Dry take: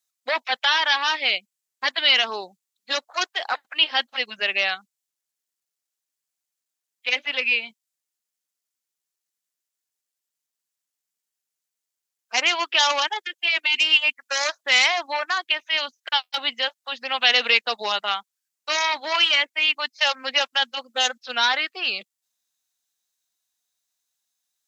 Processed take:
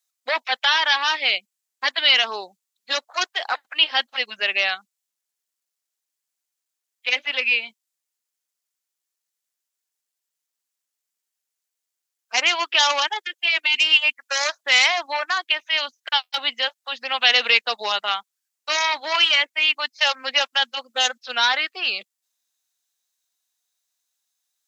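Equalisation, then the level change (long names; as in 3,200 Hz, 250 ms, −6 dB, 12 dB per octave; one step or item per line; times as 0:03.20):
high-pass filter 360 Hz 6 dB per octave
+1.5 dB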